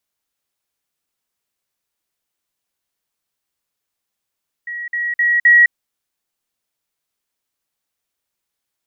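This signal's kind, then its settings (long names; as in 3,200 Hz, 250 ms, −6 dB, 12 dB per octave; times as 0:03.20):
level staircase 1,910 Hz −24 dBFS, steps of 6 dB, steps 4, 0.21 s 0.05 s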